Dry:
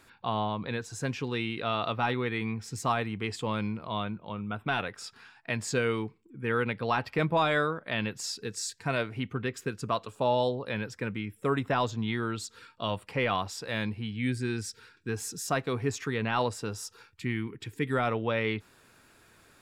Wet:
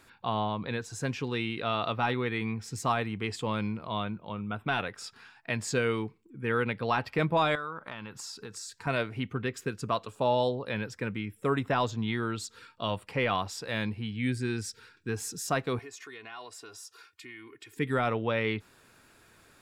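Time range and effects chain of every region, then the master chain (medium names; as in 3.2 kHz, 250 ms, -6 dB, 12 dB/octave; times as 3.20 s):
7.55–8.87 s: compression, threshold -38 dBFS + high-order bell 1.1 kHz +8.5 dB 1 oct
15.79–17.77 s: high-pass 840 Hz 6 dB/octave + comb 2.8 ms, depth 84% + compression 2.5:1, threshold -47 dBFS
whole clip: none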